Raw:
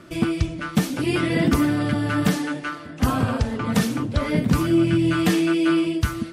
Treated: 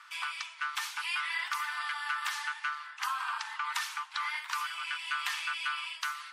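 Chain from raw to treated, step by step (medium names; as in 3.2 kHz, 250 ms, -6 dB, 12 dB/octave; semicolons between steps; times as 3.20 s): steep high-pass 900 Hz 72 dB/octave; treble shelf 7.2 kHz -10 dB; compression 5:1, threshold -30 dBFS, peak gain reduction 6 dB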